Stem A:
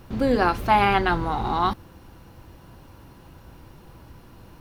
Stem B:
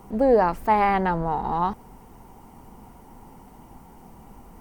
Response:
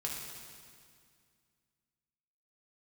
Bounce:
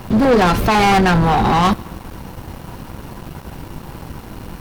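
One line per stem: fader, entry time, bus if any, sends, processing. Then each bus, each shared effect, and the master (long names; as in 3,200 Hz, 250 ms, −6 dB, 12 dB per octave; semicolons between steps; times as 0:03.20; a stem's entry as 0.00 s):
+2.5 dB, 0.00 s, send −24 dB, soft clipping −22 dBFS, distortion −8 dB
−1.0 dB, 0.00 s, no send, notch on a step sequencer 12 Hz 290–1,700 Hz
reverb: on, RT60 2.1 s, pre-delay 3 ms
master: parametric band 180 Hz +3 dB 0.8 octaves; leveller curve on the samples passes 3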